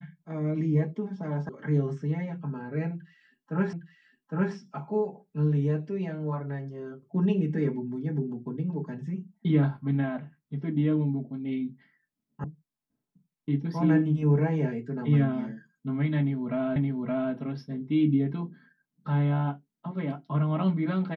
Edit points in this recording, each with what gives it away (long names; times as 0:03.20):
0:01.49: cut off before it has died away
0:03.73: the same again, the last 0.81 s
0:12.44: cut off before it has died away
0:16.76: the same again, the last 0.57 s